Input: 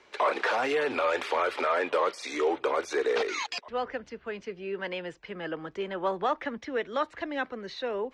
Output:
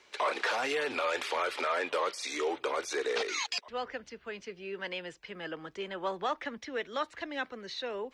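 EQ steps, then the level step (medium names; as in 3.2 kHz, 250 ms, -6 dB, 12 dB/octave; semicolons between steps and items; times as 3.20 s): treble shelf 2.6 kHz +11 dB; -6.0 dB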